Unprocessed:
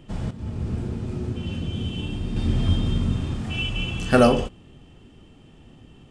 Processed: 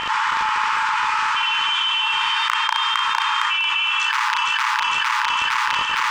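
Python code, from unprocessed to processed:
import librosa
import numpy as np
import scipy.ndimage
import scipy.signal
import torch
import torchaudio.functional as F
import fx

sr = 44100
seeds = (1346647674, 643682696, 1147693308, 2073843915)

y = (np.mod(10.0 ** (11.0 / 20.0) * x + 1.0, 2.0) - 1.0) / 10.0 ** (11.0 / 20.0)
y = fx.brickwall_highpass(y, sr, low_hz=850.0)
y = fx.peak_eq(y, sr, hz=3800.0, db=-8.0, octaves=1.3)
y = fx.echo_feedback(y, sr, ms=458, feedback_pct=48, wet_db=-8.0)
y = fx.dmg_crackle(y, sr, seeds[0], per_s=65.0, level_db=-48.0)
y = fx.air_absorb(y, sr, metres=170.0)
y = fx.doubler(y, sr, ms=35.0, db=-10.5)
y = fx.env_flatten(y, sr, amount_pct=100)
y = y * librosa.db_to_amplitude(2.0)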